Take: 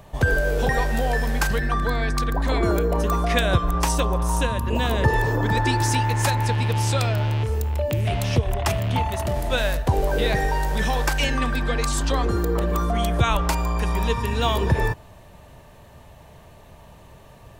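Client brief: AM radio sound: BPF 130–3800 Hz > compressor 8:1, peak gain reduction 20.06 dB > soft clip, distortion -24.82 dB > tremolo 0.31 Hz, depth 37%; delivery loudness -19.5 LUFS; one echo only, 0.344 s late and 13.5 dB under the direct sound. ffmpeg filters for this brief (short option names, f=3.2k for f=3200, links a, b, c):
-af "highpass=130,lowpass=3.8k,aecho=1:1:344:0.211,acompressor=threshold=-37dB:ratio=8,asoftclip=threshold=-28.5dB,tremolo=f=0.31:d=0.37,volume=23dB"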